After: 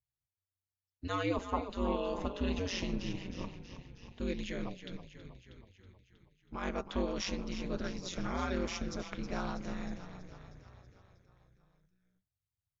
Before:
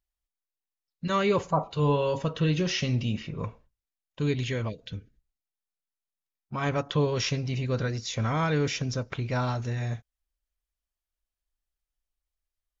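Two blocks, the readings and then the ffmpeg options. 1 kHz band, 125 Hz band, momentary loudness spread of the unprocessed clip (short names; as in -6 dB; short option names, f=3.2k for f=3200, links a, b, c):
-8.0 dB, -15.5 dB, 12 LU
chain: -filter_complex "[0:a]asplit=8[a][b][c][d][e][f][g][h];[b]adelay=320,afreqshift=-30,volume=-10.5dB[i];[c]adelay=640,afreqshift=-60,volume=-14.8dB[j];[d]adelay=960,afreqshift=-90,volume=-19.1dB[k];[e]adelay=1280,afreqshift=-120,volume=-23.4dB[l];[f]adelay=1600,afreqshift=-150,volume=-27.7dB[m];[g]adelay=1920,afreqshift=-180,volume=-32dB[n];[h]adelay=2240,afreqshift=-210,volume=-36.3dB[o];[a][i][j][k][l][m][n][o]amix=inputs=8:normalize=0,aeval=exprs='val(0)*sin(2*PI*93*n/s)':c=same,volume=-6dB"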